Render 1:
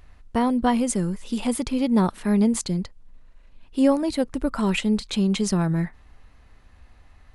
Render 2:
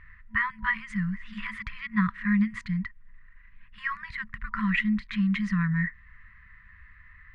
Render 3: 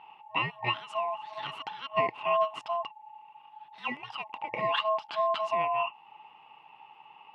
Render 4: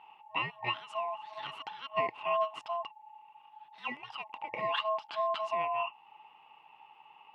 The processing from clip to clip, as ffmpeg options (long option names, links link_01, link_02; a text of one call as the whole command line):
ffmpeg -i in.wav -af "afftfilt=real='re*(1-between(b*sr/4096,220,970))':imag='im*(1-between(b*sr/4096,220,970))':win_size=4096:overlap=0.75,lowpass=frequency=1900:width_type=q:width=10,adynamicequalizer=threshold=0.0141:dfrequency=1400:dqfactor=0.72:tfrequency=1400:tqfactor=0.72:attack=5:release=100:ratio=0.375:range=3:mode=cutabove:tftype=bell,volume=-3dB" out.wav
ffmpeg -i in.wav -af "aeval=exprs='val(0)*sin(2*PI*860*n/s)':channel_layout=same" out.wav
ffmpeg -i in.wav -af "lowshelf=frequency=240:gain=-5,volume=-3.5dB" out.wav